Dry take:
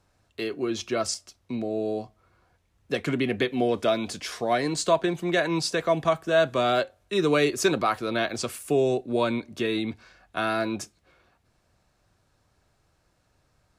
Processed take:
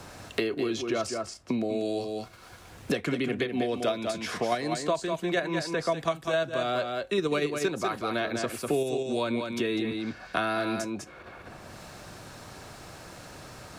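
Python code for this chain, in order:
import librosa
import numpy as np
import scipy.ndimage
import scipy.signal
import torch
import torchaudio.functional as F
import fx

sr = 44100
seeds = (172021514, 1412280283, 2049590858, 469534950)

p1 = fx.level_steps(x, sr, step_db=21)
p2 = x + F.gain(torch.from_numpy(p1), -1.5).numpy()
p3 = p2 + 10.0 ** (-7.5 / 20.0) * np.pad(p2, (int(197 * sr / 1000.0), 0))[:len(p2)]
p4 = fx.band_squash(p3, sr, depth_pct=100)
y = F.gain(torch.from_numpy(p4), -7.0).numpy()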